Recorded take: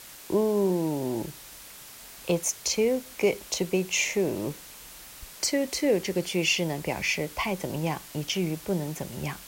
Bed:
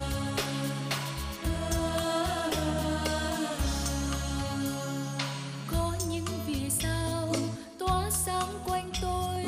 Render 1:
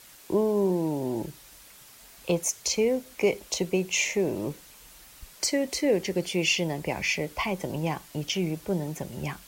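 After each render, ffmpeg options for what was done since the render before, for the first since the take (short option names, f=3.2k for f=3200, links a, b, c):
-af "afftdn=nr=6:nf=-46"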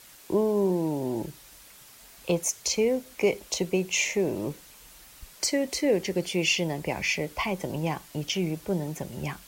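-af anull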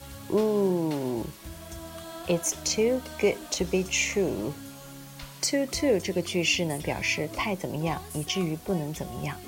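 -filter_complex "[1:a]volume=-11.5dB[a];[0:a][a]amix=inputs=2:normalize=0"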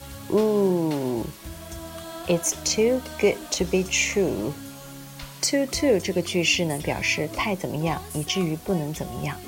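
-af "volume=3.5dB"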